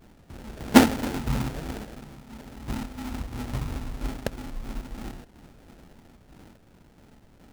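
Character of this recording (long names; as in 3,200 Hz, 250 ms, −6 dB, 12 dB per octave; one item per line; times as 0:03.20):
phaser sweep stages 8, 3 Hz, lowest notch 350–2,000 Hz
aliases and images of a low sample rate 1,100 Hz, jitter 20%
sample-and-hold tremolo 3.5 Hz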